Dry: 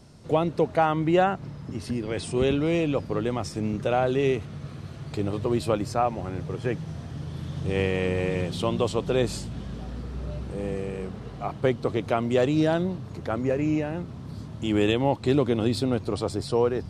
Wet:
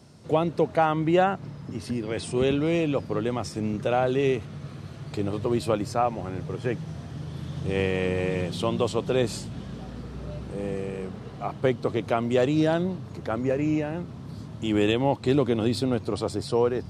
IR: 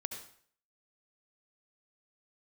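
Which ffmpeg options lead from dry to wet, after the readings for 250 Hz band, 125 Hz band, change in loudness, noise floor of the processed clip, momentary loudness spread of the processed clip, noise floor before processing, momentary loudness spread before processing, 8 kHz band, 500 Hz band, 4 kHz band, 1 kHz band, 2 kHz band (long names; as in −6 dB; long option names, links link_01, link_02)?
0.0 dB, −1.0 dB, 0.0 dB, −41 dBFS, 14 LU, −40 dBFS, 13 LU, 0.0 dB, 0.0 dB, 0.0 dB, 0.0 dB, 0.0 dB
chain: -af "highpass=82"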